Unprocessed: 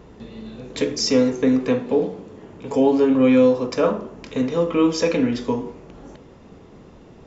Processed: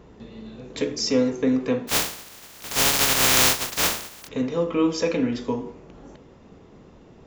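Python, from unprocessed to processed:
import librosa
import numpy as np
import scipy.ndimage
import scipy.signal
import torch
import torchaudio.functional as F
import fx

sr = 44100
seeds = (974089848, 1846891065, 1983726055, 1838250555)

y = fx.spec_flatten(x, sr, power=0.1, at=(1.87, 4.27), fade=0.02)
y = y * librosa.db_to_amplitude(-3.5)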